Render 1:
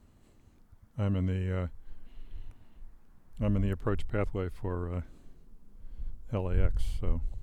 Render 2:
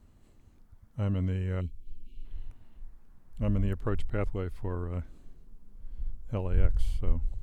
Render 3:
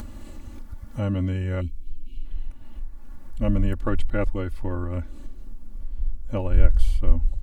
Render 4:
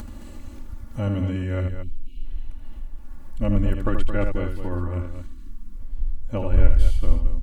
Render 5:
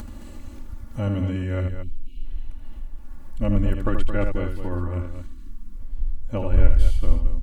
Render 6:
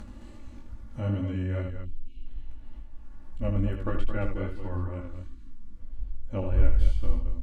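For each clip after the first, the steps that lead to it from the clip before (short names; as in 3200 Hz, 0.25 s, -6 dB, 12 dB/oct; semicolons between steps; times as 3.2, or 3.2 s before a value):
spectral gain 1.61–2.25, 440–2200 Hz -29 dB; low shelf 80 Hz +5.5 dB; gain -1.5 dB
comb 3.5 ms, depth 80%; upward compressor, threshold -28 dBFS; gain +4.5 dB
spectral delete 5.11–5.77, 360–900 Hz; loudspeakers at several distances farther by 27 m -7 dB, 75 m -9 dB
nothing audible
chorus 2.4 Hz, delay 18 ms, depth 3.8 ms; air absorption 53 m; gain -2.5 dB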